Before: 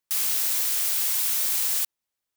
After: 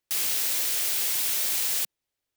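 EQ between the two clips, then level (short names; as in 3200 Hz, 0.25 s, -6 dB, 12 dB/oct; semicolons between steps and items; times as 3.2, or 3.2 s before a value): bell 190 Hz -12 dB 0.36 oct; bell 1100 Hz -7.5 dB 1.5 oct; high shelf 3800 Hz -9.5 dB; +7.0 dB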